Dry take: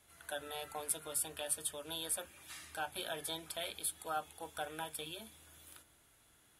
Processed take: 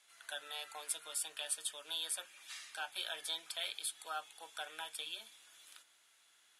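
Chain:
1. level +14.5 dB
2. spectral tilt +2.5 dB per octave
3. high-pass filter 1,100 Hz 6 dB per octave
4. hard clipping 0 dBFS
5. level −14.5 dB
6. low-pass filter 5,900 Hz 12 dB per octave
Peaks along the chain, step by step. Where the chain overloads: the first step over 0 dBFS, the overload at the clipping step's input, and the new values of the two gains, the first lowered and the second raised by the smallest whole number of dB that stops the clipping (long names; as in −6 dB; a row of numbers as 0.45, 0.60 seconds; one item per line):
−5.5, +3.5, +3.5, 0.0, −14.5, −23.0 dBFS
step 2, 3.5 dB
step 1 +10.5 dB, step 5 −10.5 dB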